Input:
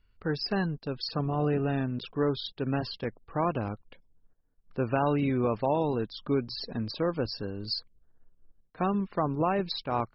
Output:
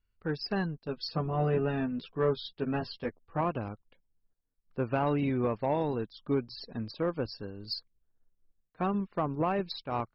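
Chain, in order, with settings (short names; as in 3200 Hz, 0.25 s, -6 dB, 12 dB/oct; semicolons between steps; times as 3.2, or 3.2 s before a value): soft clip -17 dBFS, distortion -24 dB; 0.87–3.41 doubler 12 ms -3.5 dB; upward expander 1.5:1, over -47 dBFS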